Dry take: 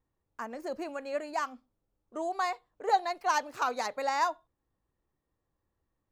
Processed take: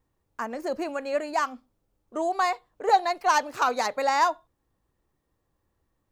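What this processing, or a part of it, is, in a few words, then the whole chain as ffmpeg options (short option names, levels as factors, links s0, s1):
parallel distortion: -filter_complex "[0:a]asplit=2[s0][s1];[s1]asoftclip=type=hard:threshold=0.0473,volume=0.299[s2];[s0][s2]amix=inputs=2:normalize=0,volume=1.68"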